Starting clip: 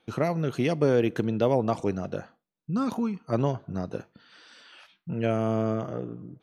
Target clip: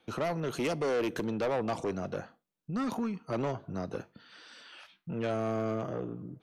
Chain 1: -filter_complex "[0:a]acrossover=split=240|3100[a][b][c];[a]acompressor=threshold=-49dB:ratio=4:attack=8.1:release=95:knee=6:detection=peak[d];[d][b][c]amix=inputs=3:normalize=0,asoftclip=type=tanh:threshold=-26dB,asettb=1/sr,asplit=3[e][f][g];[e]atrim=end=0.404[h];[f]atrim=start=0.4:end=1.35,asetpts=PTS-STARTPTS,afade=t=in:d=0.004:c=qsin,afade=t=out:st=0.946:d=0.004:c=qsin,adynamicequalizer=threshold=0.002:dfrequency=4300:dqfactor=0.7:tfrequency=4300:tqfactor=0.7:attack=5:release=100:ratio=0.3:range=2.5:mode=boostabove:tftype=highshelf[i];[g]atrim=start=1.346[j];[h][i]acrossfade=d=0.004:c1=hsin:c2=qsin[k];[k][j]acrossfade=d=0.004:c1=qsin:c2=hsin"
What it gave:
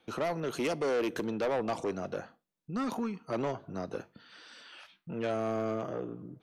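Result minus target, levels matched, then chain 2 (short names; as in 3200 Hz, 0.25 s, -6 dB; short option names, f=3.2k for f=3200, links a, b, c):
compressor: peak gain reduction +7 dB
-filter_complex "[0:a]acrossover=split=240|3100[a][b][c];[a]acompressor=threshold=-39.5dB:ratio=4:attack=8.1:release=95:knee=6:detection=peak[d];[d][b][c]amix=inputs=3:normalize=0,asoftclip=type=tanh:threshold=-26dB,asettb=1/sr,asplit=3[e][f][g];[e]atrim=end=0.404[h];[f]atrim=start=0.4:end=1.35,asetpts=PTS-STARTPTS,afade=t=in:d=0.004:c=qsin,afade=t=out:st=0.946:d=0.004:c=qsin,adynamicequalizer=threshold=0.002:dfrequency=4300:dqfactor=0.7:tfrequency=4300:tqfactor=0.7:attack=5:release=100:ratio=0.3:range=2.5:mode=boostabove:tftype=highshelf[i];[g]atrim=start=1.346[j];[h][i]acrossfade=d=0.004:c1=hsin:c2=qsin[k];[k][j]acrossfade=d=0.004:c1=qsin:c2=hsin"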